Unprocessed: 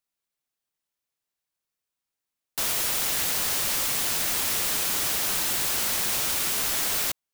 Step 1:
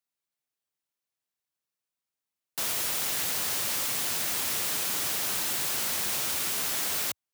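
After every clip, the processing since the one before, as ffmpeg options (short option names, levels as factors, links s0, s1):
-af "highpass=f=78:w=0.5412,highpass=f=78:w=1.3066,volume=0.668"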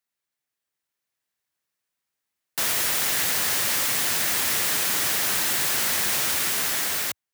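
-af "equalizer=f=1800:w=2.4:g=5,dynaudnorm=f=390:g=5:m=1.41,volume=1.33"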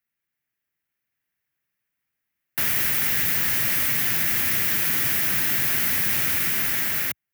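-filter_complex "[0:a]equalizer=f=125:t=o:w=1:g=3,equalizer=f=500:t=o:w=1:g=-6,equalizer=f=1000:t=o:w=1:g=-7,equalizer=f=2000:t=o:w=1:g=4,equalizer=f=4000:t=o:w=1:g=-9,equalizer=f=8000:t=o:w=1:g=-11,acrossover=split=330|3000[s0][s1][s2];[s1]acompressor=threshold=0.0178:ratio=6[s3];[s0][s3][s2]amix=inputs=3:normalize=0,volume=1.78"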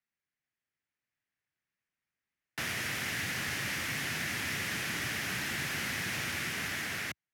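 -af "lowpass=6800,volume=0.531"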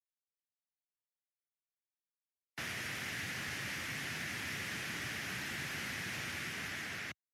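-af "afftdn=nr=18:nf=-50,volume=0.531"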